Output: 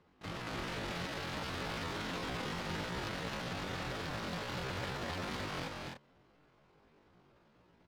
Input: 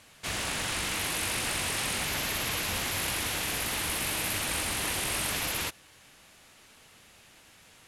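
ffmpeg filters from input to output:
ffmpeg -i in.wav -af "adynamicsmooth=sensitivity=1.5:basefreq=720,aecho=1:1:230.3|271.1:0.631|0.631,asetrate=78577,aresample=44100,atempo=0.561231,volume=-3.5dB" out.wav

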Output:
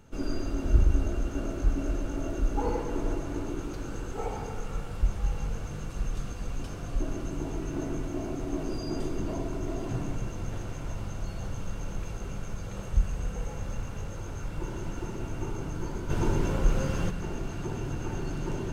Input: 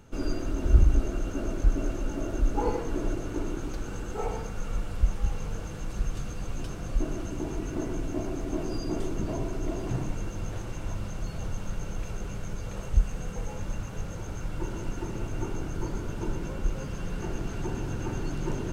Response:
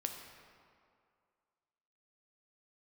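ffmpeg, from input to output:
-filter_complex "[1:a]atrim=start_sample=2205[link_01];[0:a][link_01]afir=irnorm=-1:irlink=0,asplit=3[link_02][link_03][link_04];[link_02]afade=type=out:start_time=16.09:duration=0.02[link_05];[link_03]acontrast=90,afade=type=in:start_time=16.09:duration=0.02,afade=type=out:start_time=17.09:duration=0.02[link_06];[link_04]afade=type=in:start_time=17.09:duration=0.02[link_07];[link_05][link_06][link_07]amix=inputs=3:normalize=0,volume=-1dB"

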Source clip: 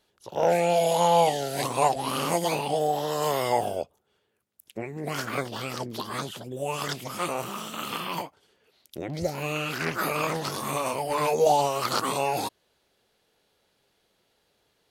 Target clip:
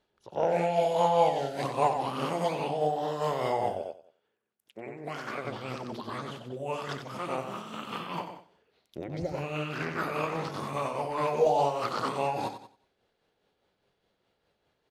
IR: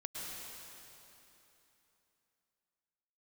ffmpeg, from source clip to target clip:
-filter_complex "[0:a]aemphasis=mode=reproduction:type=75fm,aecho=1:1:92|184|276|368:0.562|0.157|0.0441|0.0123,tremolo=f=4.9:d=0.39,asettb=1/sr,asplit=3[link_01][link_02][link_03];[link_01]atrim=end=3.824[link_04];[link_02]atrim=start=3.82:end=5.45,asetpts=PTS-STARTPTS,afade=type=in:duration=0.004:curve=qsin,afade=type=out:start_time=1.626:duration=0.004:curve=qsin,highpass=frequency=320:poles=1[link_05];[link_03]atrim=start=5.446[link_06];[link_04][link_05]acrossfade=duration=0.004:curve1=hsin:curve2=qsin[link_07];[link_07][link_06]acrossfade=duration=0.004:curve1=qsin:curve2=hsin,volume=-3dB"

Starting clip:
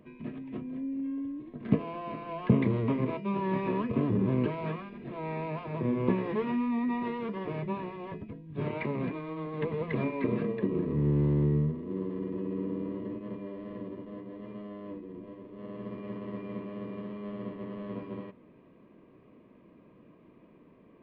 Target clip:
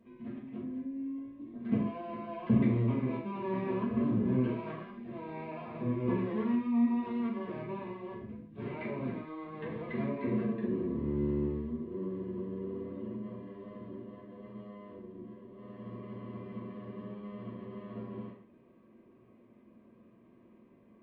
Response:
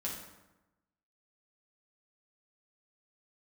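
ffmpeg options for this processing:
-filter_complex "[1:a]atrim=start_sample=2205,afade=type=out:start_time=0.26:duration=0.01,atrim=end_sample=11907,asetrate=52920,aresample=44100[link_01];[0:a][link_01]afir=irnorm=-1:irlink=0,volume=-5dB"

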